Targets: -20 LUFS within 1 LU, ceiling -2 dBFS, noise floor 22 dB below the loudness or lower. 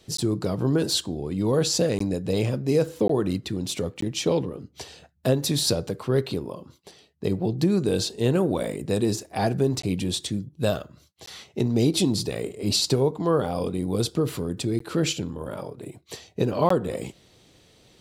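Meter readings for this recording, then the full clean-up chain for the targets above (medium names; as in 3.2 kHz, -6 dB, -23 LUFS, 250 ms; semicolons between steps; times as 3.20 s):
dropouts 8; longest dropout 14 ms; loudness -25.5 LUFS; peak level -8.0 dBFS; loudness target -20.0 LUFS
-> interpolate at 0.17/1.99/3.08/4.01/9.82/11.26/14.79/16.69 s, 14 ms; trim +5.5 dB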